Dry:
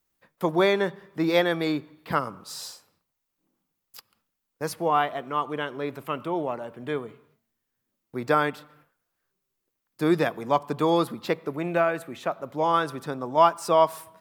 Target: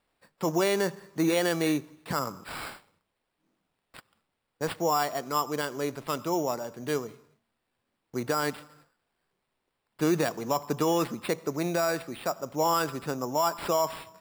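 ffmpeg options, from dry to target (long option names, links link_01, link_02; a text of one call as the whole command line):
ffmpeg -i in.wav -af "acrusher=samples=7:mix=1:aa=0.000001,alimiter=limit=-16.5dB:level=0:latency=1:release=33" out.wav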